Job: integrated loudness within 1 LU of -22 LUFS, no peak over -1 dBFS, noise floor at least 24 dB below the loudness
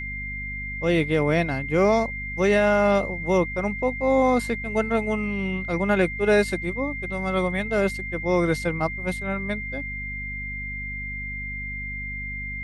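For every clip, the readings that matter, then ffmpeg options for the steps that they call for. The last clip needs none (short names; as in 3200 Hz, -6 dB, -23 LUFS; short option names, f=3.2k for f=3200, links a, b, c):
hum 50 Hz; harmonics up to 250 Hz; hum level -33 dBFS; steady tone 2100 Hz; tone level -31 dBFS; loudness -24.5 LUFS; peak -7.5 dBFS; loudness target -22.0 LUFS
-> -af "bandreject=f=50:t=h:w=6,bandreject=f=100:t=h:w=6,bandreject=f=150:t=h:w=6,bandreject=f=200:t=h:w=6,bandreject=f=250:t=h:w=6"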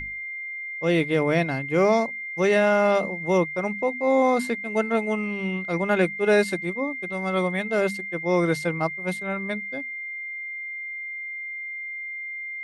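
hum none; steady tone 2100 Hz; tone level -31 dBFS
-> -af "bandreject=f=2.1k:w=30"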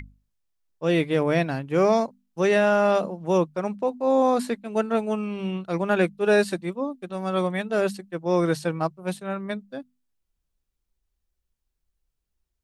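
steady tone none; loudness -24.5 LUFS; peak -8.0 dBFS; loudness target -22.0 LUFS
-> -af "volume=2.5dB"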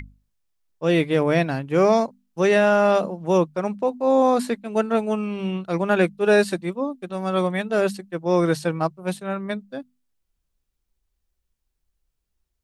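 loudness -22.0 LUFS; peak -5.5 dBFS; noise floor -77 dBFS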